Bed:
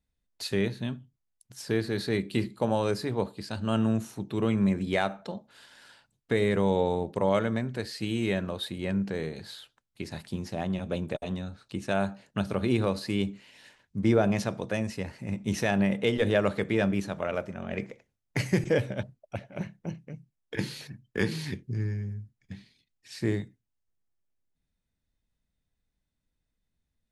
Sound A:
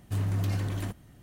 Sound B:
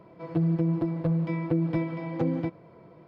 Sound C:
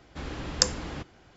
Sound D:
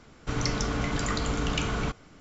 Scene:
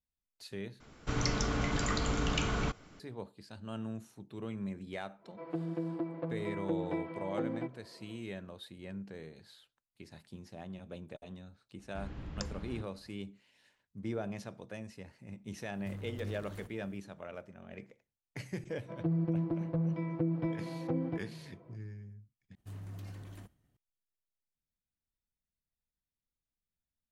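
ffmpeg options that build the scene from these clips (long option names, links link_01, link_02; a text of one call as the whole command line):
ffmpeg -i bed.wav -i cue0.wav -i cue1.wav -i cue2.wav -i cue3.wav -filter_complex "[2:a]asplit=2[link_01][link_02];[1:a]asplit=2[link_03][link_04];[0:a]volume=-14.5dB[link_05];[link_01]highpass=280,lowpass=3100[link_06];[3:a]bass=frequency=250:gain=10,treble=frequency=4000:gain=-9[link_07];[link_03]asoftclip=type=tanh:threshold=-32dB[link_08];[link_02]highshelf=frequency=3000:gain=-9.5[link_09];[link_04]agate=range=-33dB:threshold=-50dB:ratio=3:release=100:detection=peak[link_10];[link_05]asplit=3[link_11][link_12][link_13];[link_11]atrim=end=0.804[link_14];[4:a]atrim=end=2.2,asetpts=PTS-STARTPTS,volume=-3.5dB[link_15];[link_12]atrim=start=2.996:end=22.554[link_16];[link_10]atrim=end=1.22,asetpts=PTS-STARTPTS,volume=-16.5dB[link_17];[link_13]atrim=start=23.766[link_18];[link_06]atrim=end=3.07,asetpts=PTS-STARTPTS,volume=-5.5dB,afade=type=in:duration=0.1,afade=type=out:start_time=2.97:duration=0.1,adelay=5180[link_19];[link_07]atrim=end=1.36,asetpts=PTS-STARTPTS,volume=-14.5dB,afade=type=in:duration=0.004:curve=hsin,afade=type=out:start_time=1.356:duration=0.004:curve=hsin,adelay=11790[link_20];[link_08]atrim=end=1.22,asetpts=PTS-STARTPTS,volume=-9.5dB,afade=type=in:duration=0.004:curve=hsin,afade=type=out:start_time=1.216:duration=0.004:curve=hsin,adelay=15750[link_21];[link_09]atrim=end=3.07,asetpts=PTS-STARTPTS,volume=-6.5dB,afade=type=in:duration=0.004:curve=hsin,afade=type=out:start_time=3.066:duration=0.004:curve=hsin,adelay=18690[link_22];[link_14][link_15]acrossfade=duration=0.004:curve1=hsin:curve2=hsin[link_23];[link_23][link_16]acrossfade=duration=0.004:curve1=hsin:curve2=hsin[link_24];[link_24][link_17]acrossfade=duration=0.004:curve1=hsin:curve2=hsin[link_25];[link_25][link_18]acrossfade=duration=0.004:curve1=hsin:curve2=hsin[link_26];[link_26][link_19][link_20][link_21][link_22]amix=inputs=5:normalize=0" out.wav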